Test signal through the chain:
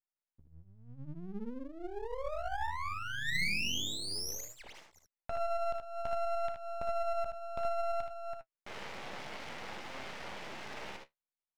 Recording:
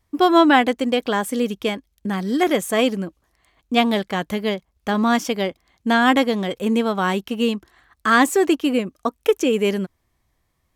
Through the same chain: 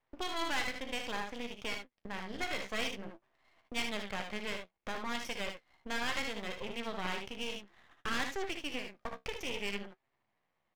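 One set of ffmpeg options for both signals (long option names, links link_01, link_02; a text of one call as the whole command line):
ffmpeg -i in.wav -filter_complex "[0:a]acrossover=split=2100[link_01][link_02];[link_01]acompressor=threshold=-33dB:ratio=4[link_03];[link_03][link_02]amix=inputs=2:normalize=0,flanger=delay=7.5:depth=7.8:regen=52:speed=0.6:shape=sinusoidal,adynamicsmooth=sensitivity=7.5:basefreq=3300,highpass=220,equalizer=frequency=290:width_type=q:width=4:gain=-6,equalizer=frequency=580:width_type=q:width=4:gain=3,equalizer=frequency=860:width_type=q:width=4:gain=5,equalizer=frequency=2100:width_type=q:width=4:gain=5,equalizer=frequency=4100:width_type=q:width=4:gain=-7,lowpass=frequency=5600:width=0.5412,lowpass=frequency=5600:width=1.3066,aresample=16000,asoftclip=type=tanh:threshold=-22.5dB,aresample=44100,aecho=1:1:34|60|75:0.158|0.355|0.447,aeval=exprs='max(val(0),0)':channel_layout=same" out.wav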